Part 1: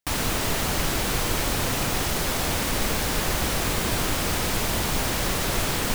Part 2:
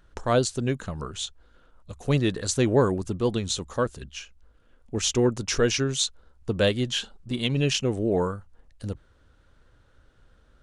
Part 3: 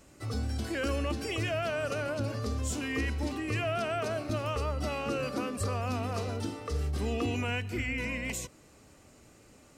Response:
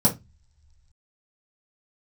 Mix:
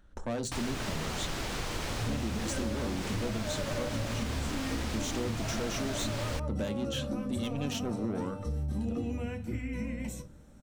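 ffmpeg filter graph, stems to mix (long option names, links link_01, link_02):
-filter_complex "[0:a]acrossover=split=8000[link_01][link_02];[link_02]acompressor=threshold=-46dB:ratio=4:attack=1:release=60[link_03];[link_01][link_03]amix=inputs=2:normalize=0,adelay=450,volume=-8.5dB[link_04];[1:a]asoftclip=type=tanh:threshold=-25dB,volume=-5.5dB,asplit=2[link_05][link_06];[link_06]volume=-21dB[link_07];[2:a]adelay=1750,volume=-14.5dB,asplit=2[link_08][link_09];[link_09]volume=-7dB[link_10];[3:a]atrim=start_sample=2205[link_11];[link_07][link_10]amix=inputs=2:normalize=0[link_12];[link_12][link_11]afir=irnorm=-1:irlink=0[link_13];[link_04][link_05][link_08][link_13]amix=inputs=4:normalize=0,acompressor=threshold=-29dB:ratio=6"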